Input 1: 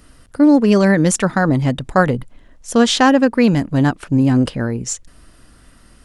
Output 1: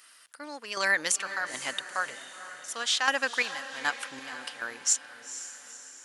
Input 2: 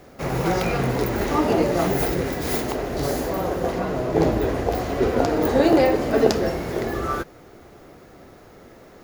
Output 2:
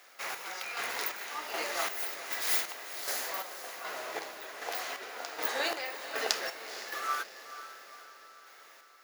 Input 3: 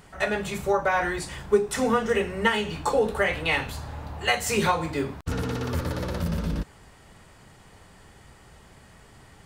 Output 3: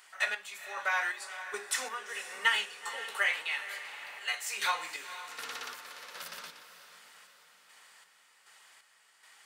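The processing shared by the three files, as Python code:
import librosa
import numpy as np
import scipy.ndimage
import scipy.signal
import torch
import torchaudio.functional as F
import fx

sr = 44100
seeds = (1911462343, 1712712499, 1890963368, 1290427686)

y = scipy.signal.sosfilt(scipy.signal.butter(2, 1500.0, 'highpass', fs=sr, output='sos'), x)
y = fx.chopper(y, sr, hz=1.3, depth_pct=60, duty_pct=45)
y = fx.echo_diffused(y, sr, ms=483, feedback_pct=53, wet_db=-12.0)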